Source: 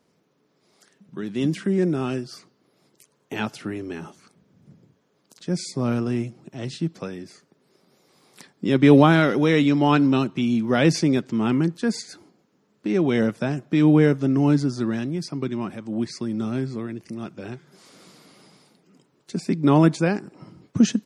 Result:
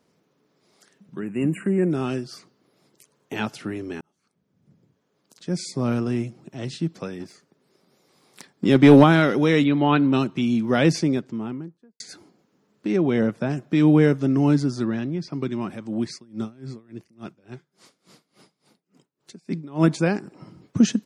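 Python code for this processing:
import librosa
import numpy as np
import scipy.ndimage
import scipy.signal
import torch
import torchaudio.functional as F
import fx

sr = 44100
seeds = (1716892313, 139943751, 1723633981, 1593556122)

y = fx.spec_erase(x, sr, start_s=1.19, length_s=0.72, low_hz=2900.0, high_hz=7000.0)
y = fx.leveller(y, sr, passes=1, at=(7.2, 9.04))
y = fx.ellip_lowpass(y, sr, hz=4000.0, order=4, stop_db=40, at=(9.63, 10.12), fade=0.02)
y = fx.studio_fade_out(y, sr, start_s=10.73, length_s=1.27)
y = fx.high_shelf(y, sr, hz=2800.0, db=-9.0, at=(12.96, 13.5))
y = fx.air_absorb(y, sr, metres=130.0, at=(14.84, 15.31), fade=0.02)
y = fx.tremolo_db(y, sr, hz=3.5, depth_db=26, at=(16.13, 19.88))
y = fx.edit(y, sr, fx.fade_in_span(start_s=4.01, length_s=1.72), tone=tone)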